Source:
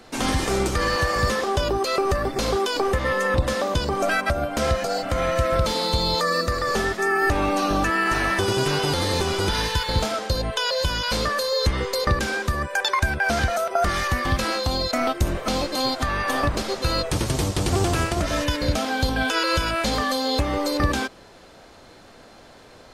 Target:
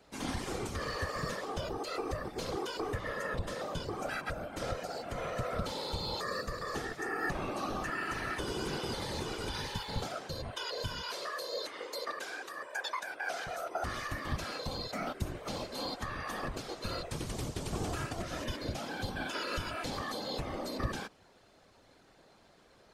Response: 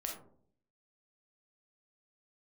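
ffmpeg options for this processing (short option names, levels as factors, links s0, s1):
-filter_complex "[0:a]asettb=1/sr,asplit=3[s0][s1][s2];[s0]atrim=end=11.114[s3];[s1]atrim=start=11.11:end=13.47,asetpts=PTS-STARTPTS,afade=t=in:d=0.004:c=qsin,afade=t=out:st=2.356:d=0.004:c=qsin,highpass=f=400:w=0.5412,highpass=f=400:w=1.3066[s4];[s2]atrim=start=13.466[s5];[s3][s4]acrossfade=d=0.004:c1=hsin:c2=qsin[s6];[s6][s5]acrossfade=d=0.004:c1=qsin:c2=hsin,afftfilt=real='hypot(re,im)*cos(2*PI*random(0))':imag='hypot(re,im)*sin(2*PI*random(1))':win_size=512:overlap=0.75,volume=0.376"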